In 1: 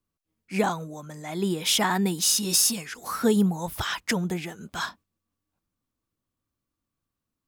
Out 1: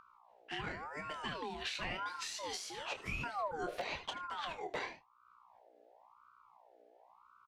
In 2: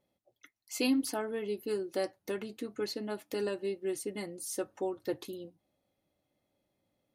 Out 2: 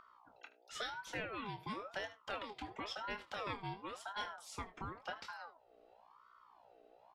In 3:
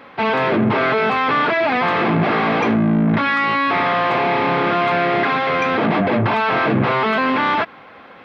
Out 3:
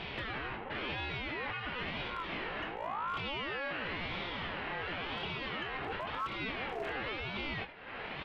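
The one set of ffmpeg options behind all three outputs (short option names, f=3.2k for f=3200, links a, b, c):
-filter_complex "[0:a]aecho=1:1:75:0.15,acompressor=threshold=-33dB:ratio=6,asubboost=boost=10.5:cutoff=110,lowpass=1.9k,aeval=exprs='val(0)+0.000891*(sin(2*PI*60*n/s)+sin(2*PI*2*60*n/s)/2+sin(2*PI*3*60*n/s)/3+sin(2*PI*4*60*n/s)/4+sin(2*PI*5*60*n/s)/5)':c=same,asoftclip=type=hard:threshold=-23.5dB,tiltshelf=f=1.3k:g=-9.5,asplit=2[a][b];[b]adelay=25,volume=-8dB[c];[a][c]amix=inputs=2:normalize=0,alimiter=level_in=8dB:limit=-24dB:level=0:latency=1:release=472,volume=-8dB,acompressor=mode=upward:threshold=-59dB:ratio=2.5,aeval=exprs='val(0)*sin(2*PI*890*n/s+890*0.4/0.95*sin(2*PI*0.95*n/s))':c=same,volume=5.5dB"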